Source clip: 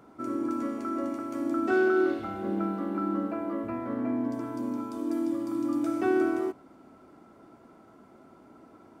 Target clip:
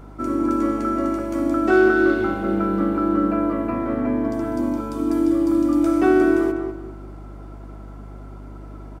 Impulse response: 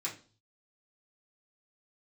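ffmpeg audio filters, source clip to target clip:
-filter_complex "[0:a]aeval=exprs='val(0)+0.00355*(sin(2*PI*50*n/s)+sin(2*PI*2*50*n/s)/2+sin(2*PI*3*50*n/s)/3+sin(2*PI*4*50*n/s)/4+sin(2*PI*5*50*n/s)/5)':channel_layout=same,asplit=2[link_01][link_02];[link_02]adelay=199,lowpass=frequency=2100:poles=1,volume=-5.5dB,asplit=2[link_03][link_04];[link_04]adelay=199,lowpass=frequency=2100:poles=1,volume=0.31,asplit=2[link_05][link_06];[link_06]adelay=199,lowpass=frequency=2100:poles=1,volume=0.31,asplit=2[link_07][link_08];[link_08]adelay=199,lowpass=frequency=2100:poles=1,volume=0.31[link_09];[link_01][link_03][link_05][link_07][link_09]amix=inputs=5:normalize=0,volume=8.5dB"

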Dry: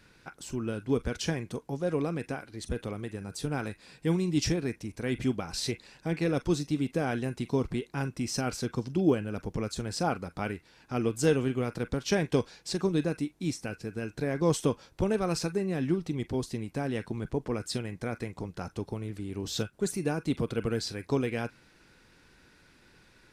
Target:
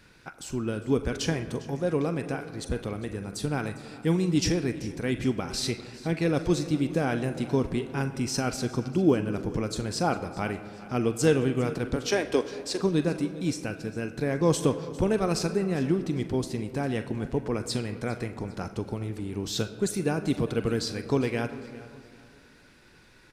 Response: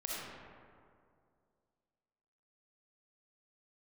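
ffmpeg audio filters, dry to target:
-filter_complex "[0:a]asettb=1/sr,asplit=3[link_01][link_02][link_03];[link_01]atrim=end=11.964[link_04];[link_02]atrim=start=11.96:end=12.8,asetpts=PTS-STARTPTS,afade=type=in:duration=0.004:curve=qsin,afade=type=out:start_time=0.836:duration=0.004:curve=qsin,highpass=frequency=280:width=0.5412,highpass=frequency=280:width=1.3066[link_05];[link_03]atrim=start=12.796[link_06];[link_04][link_05]acrossfade=duration=0.004:curve1=hsin:curve2=qsin[link_07];[link_07][link_06]acrossfade=duration=0.004:curve1=qsin:curve2=hsin,aecho=1:1:403|806|1209:0.112|0.0404|0.0145,asplit=2[link_08][link_09];[1:a]atrim=start_sample=2205[link_10];[link_09][link_10]afir=irnorm=-1:irlink=0,volume=-12dB[link_11];[link_08][link_11]amix=inputs=2:normalize=0,volume=1.5dB"

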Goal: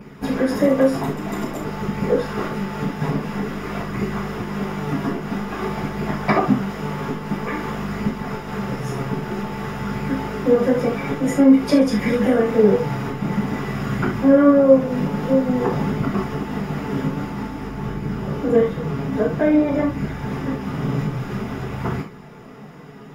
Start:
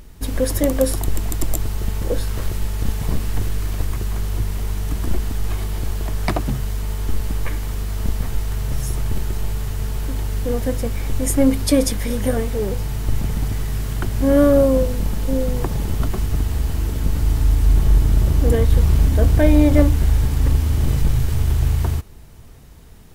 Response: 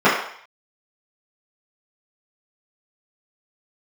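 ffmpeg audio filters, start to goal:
-filter_complex "[0:a]acompressor=threshold=-20dB:ratio=6,flanger=delay=0.4:depth=6.9:regen=60:speed=0.5:shape=sinusoidal[link_01];[1:a]atrim=start_sample=2205,afade=type=out:start_time=0.14:duration=0.01,atrim=end_sample=6615[link_02];[link_01][link_02]afir=irnorm=-1:irlink=0,volume=-10.5dB"

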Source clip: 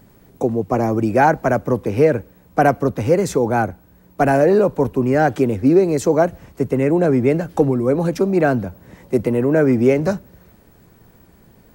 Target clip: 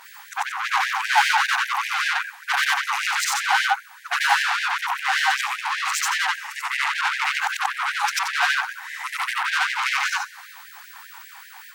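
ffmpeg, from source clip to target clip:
ffmpeg -i in.wav -filter_complex "[0:a]afftfilt=real='re':imag='-im':win_size=8192:overlap=0.75,asplit=2[link_01][link_02];[link_02]highpass=frequency=720:poles=1,volume=31dB,asoftclip=type=tanh:threshold=-6.5dB[link_03];[link_01][link_03]amix=inputs=2:normalize=0,lowpass=frequency=4200:poles=1,volume=-6dB,afftfilt=real='re*gte(b*sr/1024,720*pow(1600/720,0.5+0.5*sin(2*PI*5.1*pts/sr)))':imag='im*gte(b*sr/1024,720*pow(1600/720,0.5+0.5*sin(2*PI*5.1*pts/sr)))':win_size=1024:overlap=0.75" out.wav

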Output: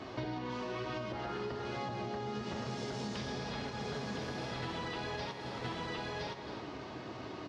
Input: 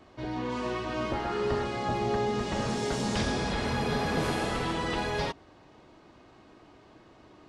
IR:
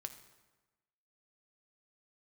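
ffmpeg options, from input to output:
-filter_complex "[0:a]flanger=delay=7.2:depth=8.2:regen=74:speed=1.1:shape=sinusoidal,asplit=3[link_01][link_02][link_03];[link_01]afade=type=out:start_time=3.69:duration=0.02[link_04];[link_02]agate=range=-33dB:threshold=-26dB:ratio=3:detection=peak,afade=type=in:start_time=3.69:duration=0.02,afade=type=out:start_time=4.62:duration=0.02[link_05];[link_03]afade=type=in:start_time=4.62:duration=0.02[link_06];[link_04][link_05][link_06]amix=inputs=3:normalize=0,aecho=1:1:1017:0.335,asplit=2[link_07][link_08];[1:a]atrim=start_sample=2205[link_09];[link_08][link_09]afir=irnorm=-1:irlink=0,volume=9.5dB[link_10];[link_07][link_10]amix=inputs=2:normalize=0,alimiter=limit=-21.5dB:level=0:latency=1:release=484,highshelf=frequency=7000:width_type=q:width=1.5:gain=-8.5,asplit=2[link_11][link_12];[link_12]aecho=0:1:269:0.112[link_13];[link_11][link_13]amix=inputs=2:normalize=0,acompressor=threshold=-41dB:ratio=10,highpass=72,volume=5dB"

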